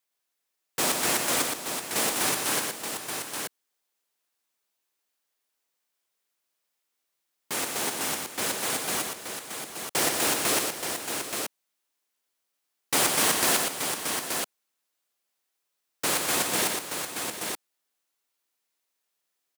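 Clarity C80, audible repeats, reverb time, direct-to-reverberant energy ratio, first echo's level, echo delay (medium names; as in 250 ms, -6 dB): no reverb, 3, no reverb, no reverb, -4.5 dB, 117 ms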